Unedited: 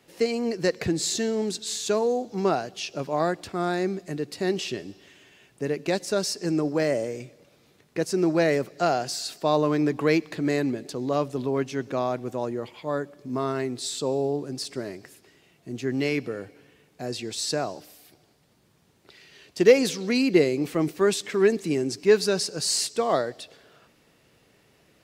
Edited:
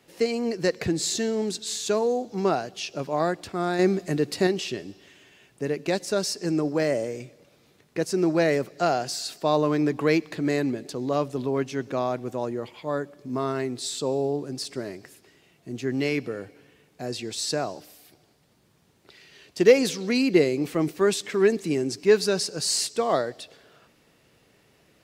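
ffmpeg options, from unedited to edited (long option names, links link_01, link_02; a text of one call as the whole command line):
ffmpeg -i in.wav -filter_complex "[0:a]asplit=3[link_01][link_02][link_03];[link_01]atrim=end=3.792[link_04];[link_02]atrim=start=3.788:end=4.472,asetpts=PTS-STARTPTS,volume=6dB[link_05];[link_03]atrim=start=4.468[link_06];[link_04][link_05]acrossfade=duration=0.004:curve1=hsin:curve2=hsin[link_07];[link_07][link_06]acrossfade=duration=0.004:curve1=hsin:curve2=hsin" out.wav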